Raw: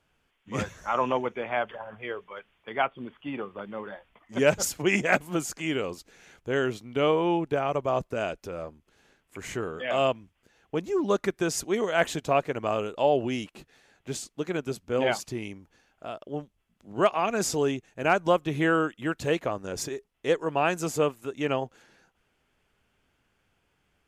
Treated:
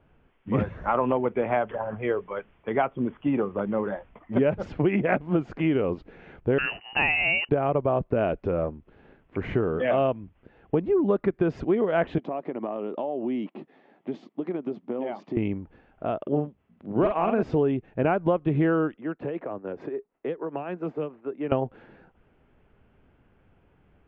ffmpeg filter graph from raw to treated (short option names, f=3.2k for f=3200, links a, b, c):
-filter_complex "[0:a]asettb=1/sr,asplit=3[a][b][c];[a]atrim=end=6.584[d];[b]atrim=start=6.58:end=7.49,asetpts=PTS-STARTPTS,afade=t=in:d=0.004:c=qsin,afade=t=out:st=0.906:d=0.004:c=qsin,highpass=f=380:p=1,acontrast=43,lowpass=f=2.6k:t=q:w=0.5098,lowpass=f=2.6k:t=q:w=0.6013,lowpass=f=2.6k:t=q:w=0.9,lowpass=f=2.6k:t=q:w=2.563,afreqshift=-3100[e];[c]atrim=start=7.486[f];[d][e]acrossfade=d=0.004:c1=hsin:c2=qsin[g];[g][f]acrossfade=d=0.004:c1=qsin:c2=hsin,asettb=1/sr,asplit=3[h][i][j];[h]atrim=end=12.184[k];[i]atrim=start=12.18:end=15.37,asetpts=PTS-STARTPTS,afade=t=in:d=0.004:c=qsin,afade=t=out:st=3.186:d=0.004:c=qsin,acompressor=threshold=-34dB:ratio=10:attack=3.2:release=140:knee=1:detection=peak,highpass=f=210:w=0.5412,highpass=f=210:w=1.3066,equalizer=f=470:t=q:w=4:g=-6,equalizer=f=1.5k:t=q:w=4:g=-9,equalizer=f=2.6k:t=q:w=4:g=-6,equalizer=f=4.1k:t=q:w=4:g=-3,lowpass=f=7.3k:w=0.5412,lowpass=f=7.3k:w=1.3066[l];[j]atrim=start=15.366[m];[k][l]acrossfade=d=0.004:c1=hsin:c2=qsin[n];[n][m]acrossfade=d=0.004:c1=qsin:c2=hsin,asettb=1/sr,asplit=3[o][p][q];[o]atrim=end=16.224[r];[p]atrim=start=16.22:end=17.43,asetpts=PTS-STARTPTS,afade=t=in:d=0.004:c=qsin,afade=t=out:st=1.206:d=0.004:c=qsin,highpass=120,lowpass=7.8k,asoftclip=type=hard:threshold=-17dB,asplit=2[s][t];[t]adelay=47,volume=-4.5dB[u];[s][u]amix=inputs=2:normalize=0,atrim=end_sample=53361[v];[q]atrim=start=17.426[w];[r][v]acrossfade=d=0.004:c1=hsin:c2=qsin[x];[x][w]acrossfade=d=0.004:c1=qsin:c2=hsin,asettb=1/sr,asplit=3[y][z][aa];[y]atrim=end=18.964[ab];[z]atrim=start=18.96:end=21.52,asetpts=PTS-STARTPTS,afade=t=in:d=0.004:c=qsin,afade=t=out:st=2.556:d=0.004:c=qsin,tremolo=f=6.8:d=0.7,acrossover=split=170|3000[ac][ad][ae];[ad]acompressor=threshold=-37dB:ratio=10:attack=3.2:release=140:knee=2.83:detection=peak[af];[ac][af][ae]amix=inputs=3:normalize=0,acrossover=split=230 2300:gain=0.0794 1 0.2[ag][ah][ai];[ag][ah][ai]amix=inputs=3:normalize=0[aj];[aa]atrim=start=21.516[ak];[ab][aj]acrossfade=d=0.004:c1=hsin:c2=qsin[al];[al][ak]acrossfade=d=0.004:c1=qsin:c2=hsin,lowpass=f=3k:w=0.5412,lowpass=f=3k:w=1.3066,tiltshelf=f=1.1k:g=7.5,acompressor=threshold=-26dB:ratio=6,volume=6dB"